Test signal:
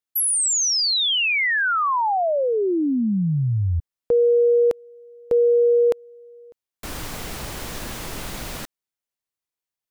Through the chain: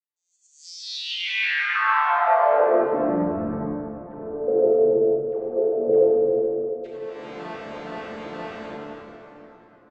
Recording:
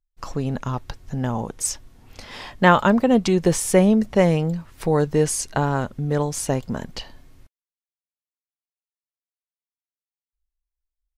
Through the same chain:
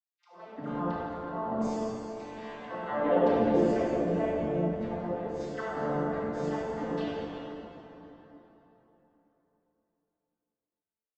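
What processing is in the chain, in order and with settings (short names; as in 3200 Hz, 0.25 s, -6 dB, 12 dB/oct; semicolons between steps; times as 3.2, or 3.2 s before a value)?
arpeggiated vocoder minor triad, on D3, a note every 0.157 s; compressor 12:1, threshold -22 dBFS; bell 130 Hz -10 dB 1.1 oct; notches 60/120/180/240/300/360 Hz; dispersion lows, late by 0.121 s, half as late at 630 Hz; auto swell 0.212 s; three-band isolator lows -23 dB, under 230 Hz, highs -17 dB, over 3800 Hz; frequency-shifting echo 96 ms, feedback 42%, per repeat -100 Hz, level -13 dB; plate-style reverb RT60 3.8 s, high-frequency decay 0.65×, DRR -7 dB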